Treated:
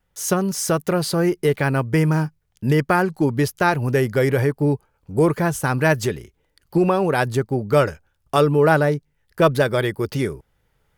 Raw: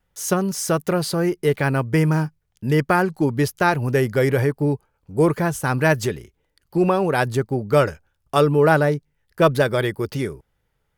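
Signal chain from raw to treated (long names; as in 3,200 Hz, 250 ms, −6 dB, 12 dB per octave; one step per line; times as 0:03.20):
camcorder AGC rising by 5.7 dB per second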